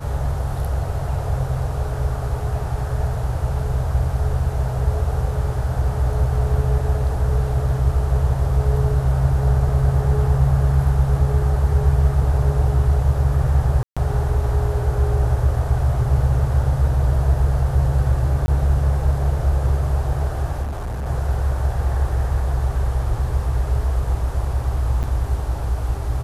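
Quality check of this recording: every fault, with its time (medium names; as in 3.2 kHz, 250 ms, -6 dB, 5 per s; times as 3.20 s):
13.83–13.97 s: dropout 136 ms
18.46–18.48 s: dropout 20 ms
20.62–21.06 s: clipped -23 dBFS
25.03–25.04 s: dropout 7.7 ms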